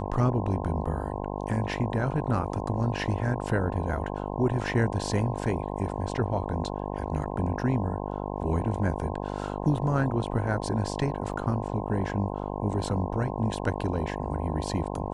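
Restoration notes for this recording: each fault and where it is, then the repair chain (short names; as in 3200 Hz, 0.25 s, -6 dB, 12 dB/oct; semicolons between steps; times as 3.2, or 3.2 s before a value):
buzz 50 Hz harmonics 21 -33 dBFS
11.33–11.34 gap 6 ms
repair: de-hum 50 Hz, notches 21; interpolate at 11.33, 6 ms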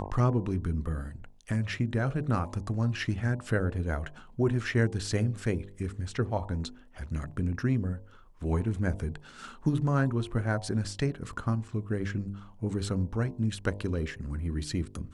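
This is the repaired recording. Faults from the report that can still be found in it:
none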